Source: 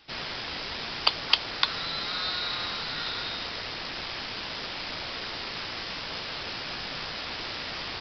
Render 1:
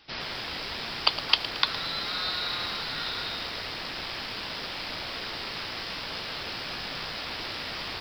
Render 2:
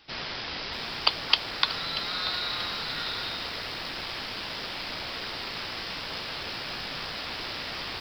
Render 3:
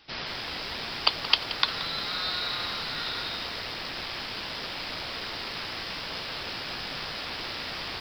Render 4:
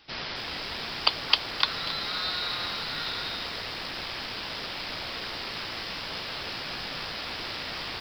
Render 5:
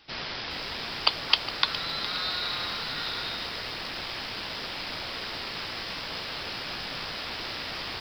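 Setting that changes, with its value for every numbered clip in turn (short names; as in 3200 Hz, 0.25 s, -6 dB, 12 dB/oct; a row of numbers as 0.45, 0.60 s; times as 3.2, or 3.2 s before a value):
lo-fi delay, time: 0.112, 0.635, 0.176, 0.269, 0.412 s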